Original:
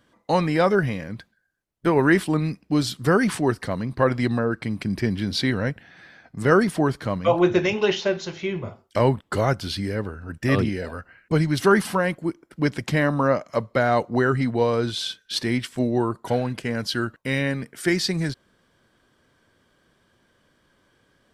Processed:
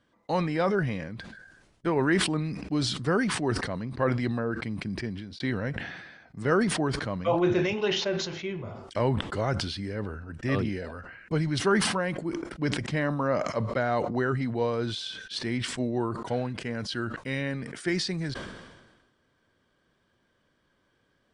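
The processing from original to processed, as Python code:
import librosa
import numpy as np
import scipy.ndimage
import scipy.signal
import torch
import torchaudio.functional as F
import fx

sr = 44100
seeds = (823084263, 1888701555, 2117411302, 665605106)

y = fx.edit(x, sr, fx.fade_out_span(start_s=4.82, length_s=0.58), tone=tone)
y = scipy.signal.sosfilt(scipy.signal.ellip(4, 1.0, 40, 9700.0, 'lowpass', fs=sr, output='sos'), y)
y = fx.high_shelf(y, sr, hz=7500.0, db=-9.0)
y = fx.sustainer(y, sr, db_per_s=45.0)
y = y * 10.0 ** (-6.0 / 20.0)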